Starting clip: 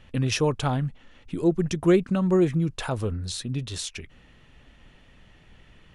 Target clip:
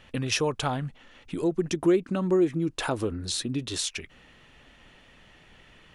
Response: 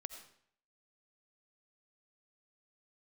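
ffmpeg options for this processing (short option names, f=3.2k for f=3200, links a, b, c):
-filter_complex "[0:a]asettb=1/sr,asplit=3[a][b][c];[a]atrim=end=1.584[d];[b]atrim=start=1.58:end=3.77,asetpts=PTS-STARTPTS,afade=t=in:d=0.004:c=qsin,afade=t=out:st=2.186:d=0.004:c=qsin,equalizer=f=310:t=o:w=0.65:g=9.5[e];[c]atrim=start=3.766[f];[d][e]acrossfade=d=0.004:c1=hsin:c2=qsin[g];[g][f]acrossfade=d=0.004:c1=qsin:c2=hsin,acompressor=threshold=-26dB:ratio=2,lowshelf=f=220:g=-10,volume=3.5dB"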